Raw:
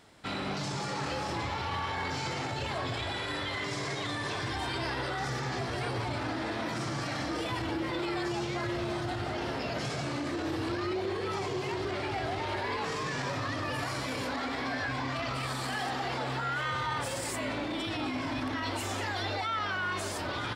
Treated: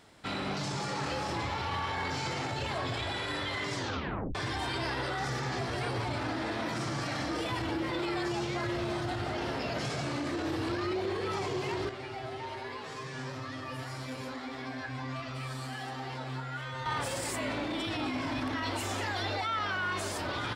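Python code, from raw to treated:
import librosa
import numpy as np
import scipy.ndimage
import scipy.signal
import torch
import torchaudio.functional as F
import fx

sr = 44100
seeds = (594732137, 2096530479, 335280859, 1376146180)

y = fx.comb_fb(x, sr, f0_hz=130.0, decay_s=0.16, harmonics='all', damping=0.0, mix_pct=90, at=(11.89, 16.86))
y = fx.edit(y, sr, fx.tape_stop(start_s=3.75, length_s=0.6), tone=tone)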